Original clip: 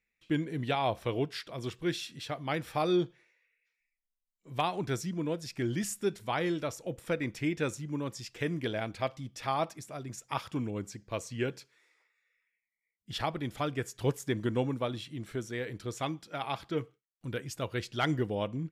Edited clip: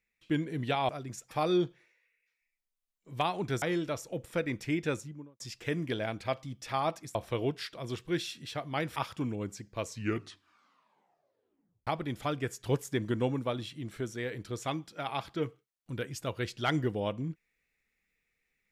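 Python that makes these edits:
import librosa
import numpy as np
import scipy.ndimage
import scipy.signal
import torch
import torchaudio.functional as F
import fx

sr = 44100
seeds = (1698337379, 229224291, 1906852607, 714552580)

y = fx.studio_fade_out(x, sr, start_s=7.61, length_s=0.53)
y = fx.edit(y, sr, fx.swap(start_s=0.89, length_s=1.81, other_s=9.89, other_length_s=0.42),
    fx.cut(start_s=5.01, length_s=1.35),
    fx.tape_stop(start_s=11.18, length_s=2.04), tone=tone)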